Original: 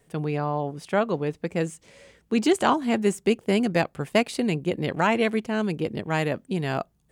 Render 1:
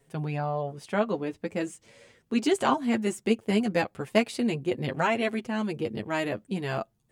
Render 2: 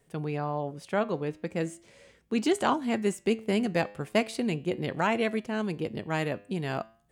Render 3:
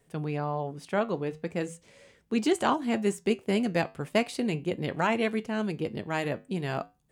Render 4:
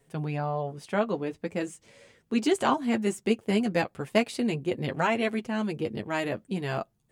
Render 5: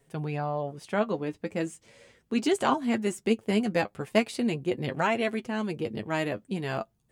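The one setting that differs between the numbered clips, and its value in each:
flanger, regen: +5, +88, −79, −21, +35%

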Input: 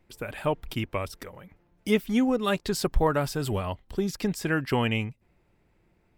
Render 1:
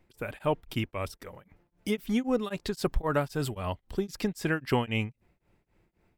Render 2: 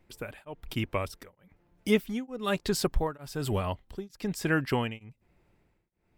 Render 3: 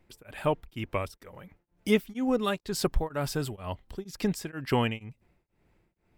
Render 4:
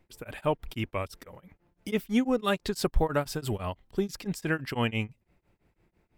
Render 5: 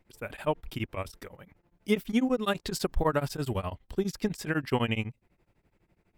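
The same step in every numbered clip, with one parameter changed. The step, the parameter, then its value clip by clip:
tremolo along a rectified sine, nulls at: 3.8, 1.1, 2.1, 6, 12 Hertz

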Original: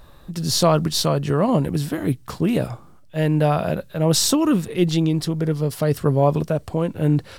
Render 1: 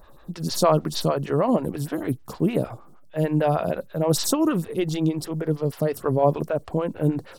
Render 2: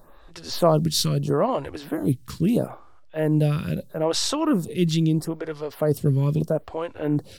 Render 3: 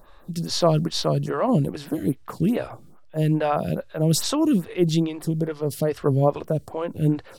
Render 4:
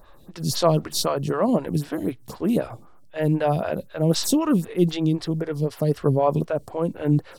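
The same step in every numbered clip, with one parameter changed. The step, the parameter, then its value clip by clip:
phaser with staggered stages, speed: 6.5, 0.77, 2.4, 3.9 Hertz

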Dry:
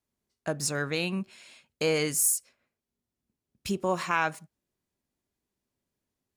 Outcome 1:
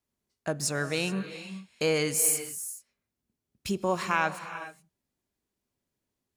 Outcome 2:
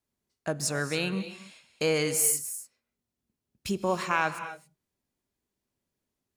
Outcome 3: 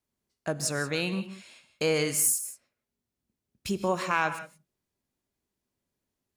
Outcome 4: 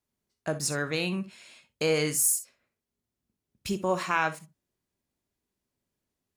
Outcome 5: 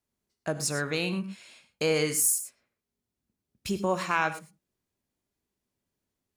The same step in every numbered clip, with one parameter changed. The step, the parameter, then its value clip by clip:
reverb whose tail is shaped and stops, gate: 450, 300, 200, 80, 130 milliseconds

